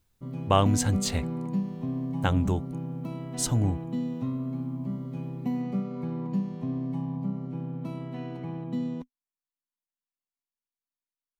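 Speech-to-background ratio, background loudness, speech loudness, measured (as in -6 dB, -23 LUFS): 5.5 dB, -33.0 LUFS, -27.5 LUFS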